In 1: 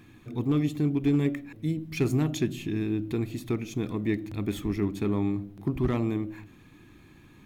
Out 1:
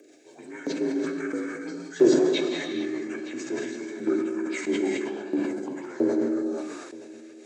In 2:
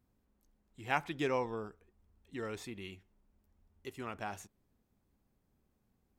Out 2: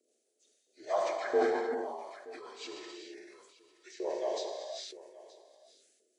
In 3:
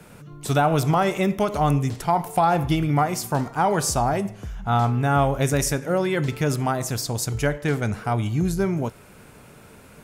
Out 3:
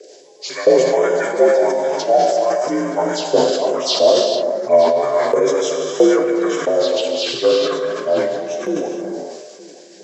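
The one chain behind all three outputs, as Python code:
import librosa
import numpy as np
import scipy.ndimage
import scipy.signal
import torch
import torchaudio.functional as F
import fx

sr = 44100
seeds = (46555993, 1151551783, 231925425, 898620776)

y = fx.partial_stretch(x, sr, pct=83)
y = fx.low_shelf_res(y, sr, hz=620.0, db=13.5, q=1.5)
y = fx.env_phaser(y, sr, low_hz=170.0, high_hz=4400.0, full_db=-7.0)
y = fx.rotary(y, sr, hz=6.3)
y = fx.filter_lfo_highpass(y, sr, shape='saw_up', hz=1.5, low_hz=480.0, high_hz=1900.0, q=2.2)
y = fx.riaa(y, sr, side='recording')
y = y + 10.0 ** (-19.5 / 20.0) * np.pad(y, (int(923 * sr / 1000.0), 0))[:len(y)]
y = fx.rev_gated(y, sr, seeds[0], gate_ms=490, shape='flat', drr_db=1.0)
y = fx.sustainer(y, sr, db_per_s=38.0)
y = F.gain(torch.from_numpy(y), 2.5).numpy()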